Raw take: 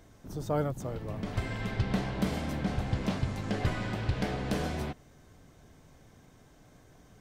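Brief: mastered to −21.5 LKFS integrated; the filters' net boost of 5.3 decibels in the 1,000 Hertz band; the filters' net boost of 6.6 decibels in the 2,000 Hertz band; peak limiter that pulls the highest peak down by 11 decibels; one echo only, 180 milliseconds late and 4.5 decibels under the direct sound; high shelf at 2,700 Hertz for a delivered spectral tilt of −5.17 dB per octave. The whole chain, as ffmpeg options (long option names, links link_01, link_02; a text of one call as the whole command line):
ffmpeg -i in.wav -af "equalizer=frequency=1000:width_type=o:gain=5.5,equalizer=frequency=2000:width_type=o:gain=4,highshelf=frequency=2700:gain=6,alimiter=level_in=1dB:limit=-24dB:level=0:latency=1,volume=-1dB,aecho=1:1:180:0.596,volume=12.5dB" out.wav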